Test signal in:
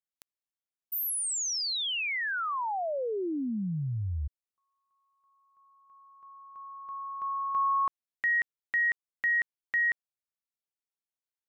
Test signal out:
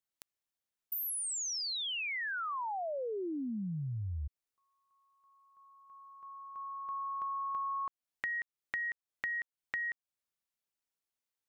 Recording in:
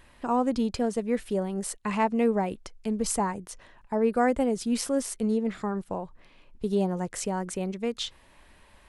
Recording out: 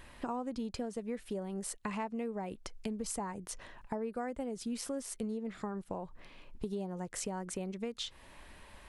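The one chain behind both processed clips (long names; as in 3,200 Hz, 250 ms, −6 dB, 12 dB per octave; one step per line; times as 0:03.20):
downward compressor 6 to 1, threshold −38 dBFS
level +2 dB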